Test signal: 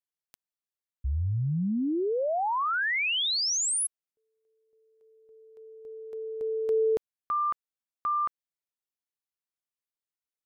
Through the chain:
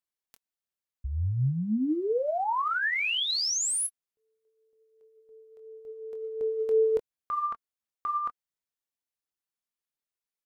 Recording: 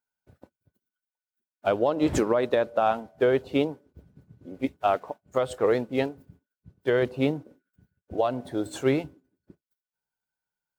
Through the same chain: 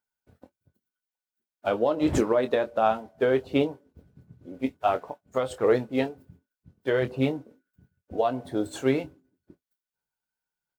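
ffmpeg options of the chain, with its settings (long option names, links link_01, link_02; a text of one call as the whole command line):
ffmpeg -i in.wav -filter_complex "[0:a]aphaser=in_gain=1:out_gain=1:delay=4.5:decay=0.29:speed=1.4:type=sinusoidal,asplit=2[link_01][link_02];[link_02]adelay=23,volume=-10dB[link_03];[link_01][link_03]amix=inputs=2:normalize=0,volume=-1.5dB" out.wav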